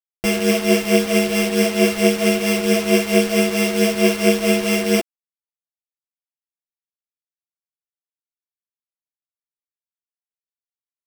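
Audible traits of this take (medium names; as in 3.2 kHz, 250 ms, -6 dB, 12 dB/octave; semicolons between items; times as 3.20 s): a buzz of ramps at a fixed pitch in blocks of 16 samples; tremolo triangle 4.5 Hz, depth 85%; a quantiser's noise floor 6-bit, dither none; a shimmering, thickened sound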